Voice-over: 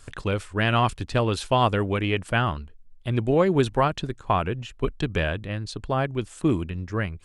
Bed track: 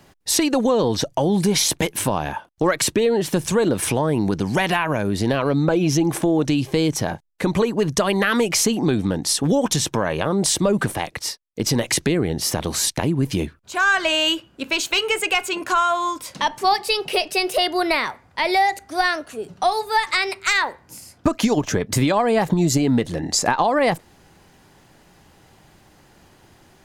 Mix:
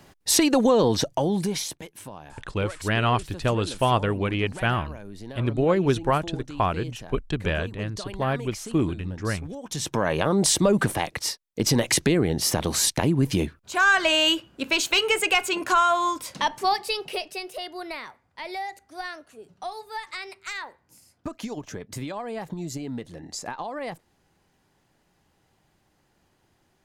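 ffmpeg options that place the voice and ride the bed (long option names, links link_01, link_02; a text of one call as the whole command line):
ffmpeg -i stem1.wav -i stem2.wav -filter_complex "[0:a]adelay=2300,volume=-1dB[link_01];[1:a]volume=17.5dB,afade=type=out:start_time=0.87:duration=0.93:silence=0.11885,afade=type=in:start_time=9.65:duration=0.44:silence=0.125893,afade=type=out:start_time=16.08:duration=1.4:silence=0.199526[link_02];[link_01][link_02]amix=inputs=2:normalize=0" out.wav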